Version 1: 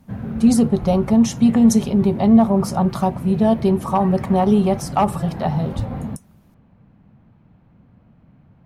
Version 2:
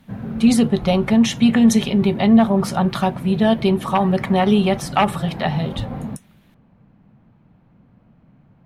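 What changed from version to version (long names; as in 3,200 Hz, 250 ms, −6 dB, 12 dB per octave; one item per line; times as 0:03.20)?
speech: add flat-topped bell 2,400 Hz +11.5 dB
master: add parametric band 77 Hz −7.5 dB 0.69 octaves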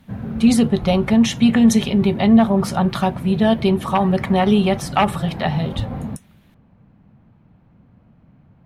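master: add parametric band 77 Hz +7.5 dB 0.69 octaves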